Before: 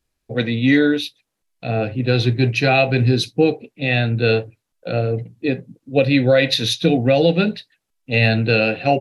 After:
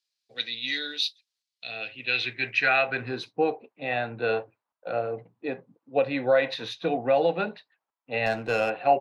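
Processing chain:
band-pass filter sweep 4,500 Hz → 960 Hz, 0:01.47–0:03.32
0:08.26–0:08.70: windowed peak hold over 3 samples
level +3.5 dB

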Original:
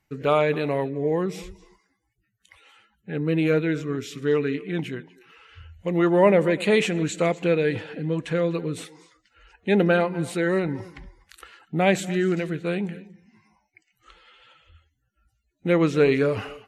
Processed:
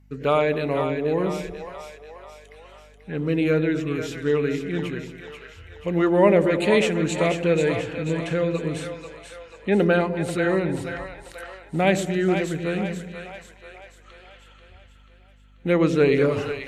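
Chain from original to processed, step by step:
mains hum 50 Hz, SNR 29 dB
0:08.73–0:09.77: treble cut that deepens with the level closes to 2,300 Hz, closed at −21.5 dBFS
echo with a time of its own for lows and highs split 550 Hz, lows 102 ms, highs 487 ms, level −7 dB

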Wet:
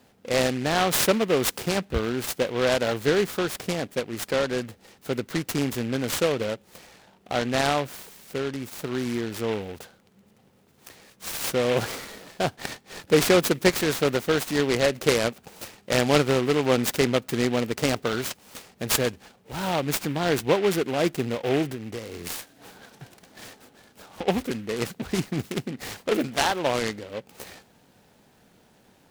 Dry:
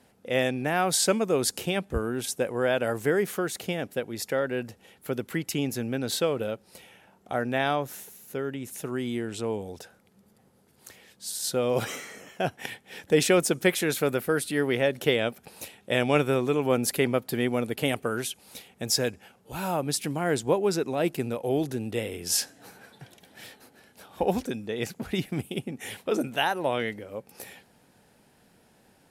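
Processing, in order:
0:21.69–0:24.28: downward compressor 10 to 1, threshold −33 dBFS, peak gain reduction 12.5 dB
short delay modulated by noise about 2,000 Hz, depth 0.078 ms
level +2.5 dB

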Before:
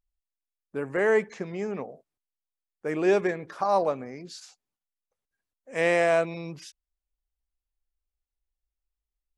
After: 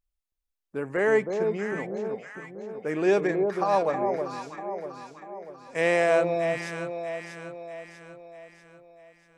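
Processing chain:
0:04.17–0:05.75: downward compressor, threshold −49 dBFS, peak gain reduction 10.5 dB
delay that swaps between a low-pass and a high-pass 321 ms, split 970 Hz, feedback 69%, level −4 dB

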